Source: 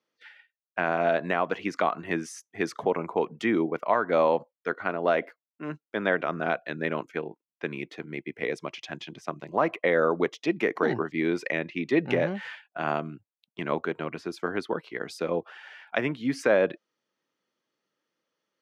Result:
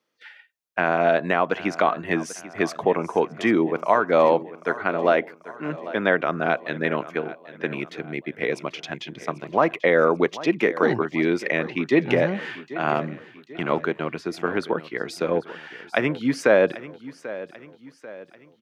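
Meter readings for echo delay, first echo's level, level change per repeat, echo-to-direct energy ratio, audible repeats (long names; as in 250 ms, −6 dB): 790 ms, −16.0 dB, −6.5 dB, −15.0 dB, 3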